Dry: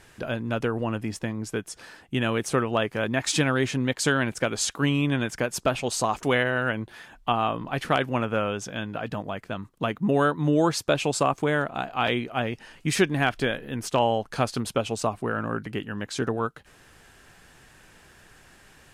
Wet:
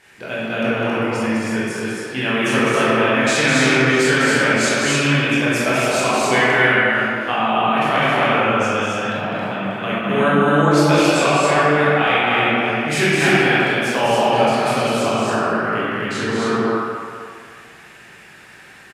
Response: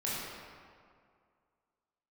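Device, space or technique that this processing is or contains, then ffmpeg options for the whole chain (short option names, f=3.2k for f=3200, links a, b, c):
stadium PA: -filter_complex "[0:a]highpass=f=220:p=1,equalizer=f=2.2k:t=o:w=1:g=7,aecho=1:1:204.1|271.1:0.562|0.794[a];[1:a]atrim=start_sample=2205[b];[a][b]afir=irnorm=-1:irlink=0"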